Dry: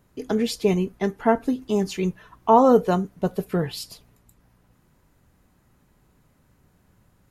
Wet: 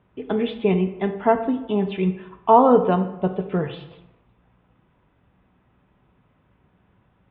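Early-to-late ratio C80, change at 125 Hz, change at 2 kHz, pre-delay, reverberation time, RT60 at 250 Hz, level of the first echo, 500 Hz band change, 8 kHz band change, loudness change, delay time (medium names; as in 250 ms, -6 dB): 13.5 dB, +2.0 dB, +0.5 dB, 3 ms, 0.95 s, 0.90 s, no echo, +1.5 dB, under -40 dB, +1.5 dB, no echo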